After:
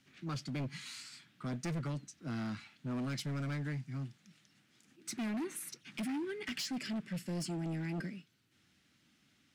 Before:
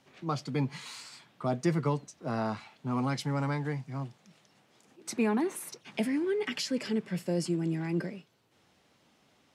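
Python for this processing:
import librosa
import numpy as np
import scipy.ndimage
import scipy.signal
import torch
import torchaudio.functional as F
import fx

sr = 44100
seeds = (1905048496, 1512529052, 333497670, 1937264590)

y = fx.band_shelf(x, sr, hz=660.0, db=-13.0, octaves=1.7)
y = np.clip(10.0 ** (32.0 / 20.0) * y, -1.0, 1.0) / 10.0 ** (32.0 / 20.0)
y = y * librosa.db_to_amplitude(-2.5)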